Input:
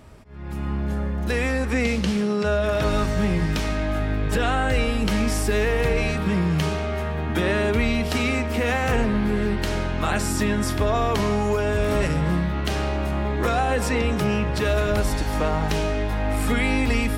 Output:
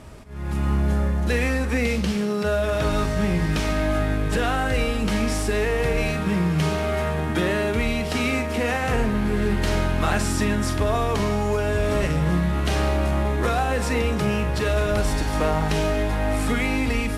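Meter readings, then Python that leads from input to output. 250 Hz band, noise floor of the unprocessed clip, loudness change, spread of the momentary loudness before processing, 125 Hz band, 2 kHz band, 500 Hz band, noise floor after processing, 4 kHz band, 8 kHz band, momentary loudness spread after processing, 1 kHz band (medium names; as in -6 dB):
0.0 dB, -26 dBFS, 0.0 dB, 4 LU, +0.5 dB, 0.0 dB, 0.0 dB, -25 dBFS, 0.0 dB, 0.0 dB, 2 LU, 0.0 dB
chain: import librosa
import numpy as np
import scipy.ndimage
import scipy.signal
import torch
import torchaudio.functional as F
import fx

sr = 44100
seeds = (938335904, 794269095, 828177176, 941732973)

y = fx.cvsd(x, sr, bps=64000)
y = fx.rider(y, sr, range_db=10, speed_s=0.5)
y = fx.doubler(y, sr, ms=45.0, db=-12)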